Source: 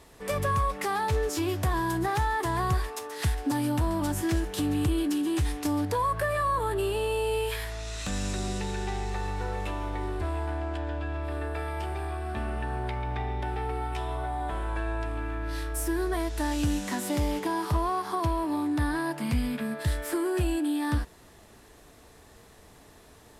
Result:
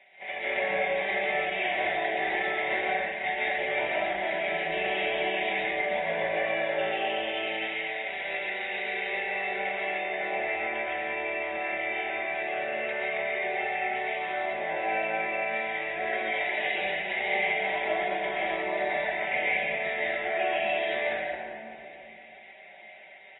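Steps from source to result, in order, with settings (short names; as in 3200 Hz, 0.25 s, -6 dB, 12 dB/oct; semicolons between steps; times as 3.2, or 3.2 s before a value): spectral limiter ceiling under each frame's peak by 25 dB; double band-pass 1200 Hz, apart 1.6 oct; reverb RT60 2.0 s, pre-delay 0.115 s, DRR -6.5 dB; in parallel at +2 dB: compressor 8:1, threshold -46 dBFS, peak gain reduction 21 dB; on the sum: comb 5.2 ms, depth 78%; on a send: early reflections 18 ms -11 dB, 53 ms -14.5 dB; on the sum: AAC 16 kbps 16000 Hz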